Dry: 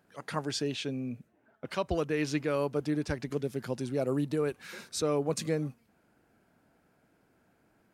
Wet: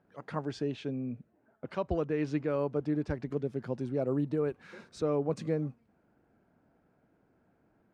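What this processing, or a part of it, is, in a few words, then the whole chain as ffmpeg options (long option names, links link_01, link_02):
through cloth: -af "lowpass=8000,highshelf=frequency=2300:gain=-16.5"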